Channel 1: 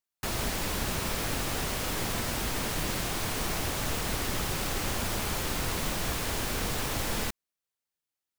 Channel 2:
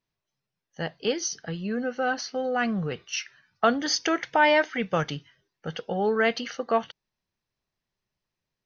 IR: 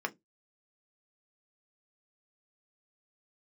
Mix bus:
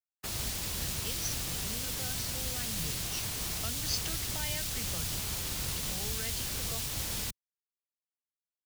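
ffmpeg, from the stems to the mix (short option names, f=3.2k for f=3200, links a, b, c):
-filter_complex "[0:a]volume=1dB[a];[1:a]volume=-7dB[b];[a][b]amix=inputs=2:normalize=0,agate=range=-33dB:threshold=-28dB:ratio=3:detection=peak,highpass=f=72:p=1,acrossover=split=140|3000[c][d][e];[d]acompressor=threshold=-45dB:ratio=6[f];[c][f][e]amix=inputs=3:normalize=0"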